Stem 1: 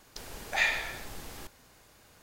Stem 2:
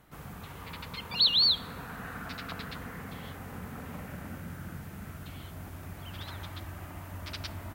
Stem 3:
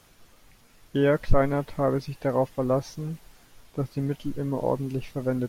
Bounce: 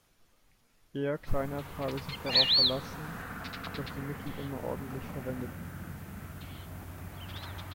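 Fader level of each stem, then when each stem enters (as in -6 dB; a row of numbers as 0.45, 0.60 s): -11.5, -0.5, -11.0 dB; 1.75, 1.15, 0.00 s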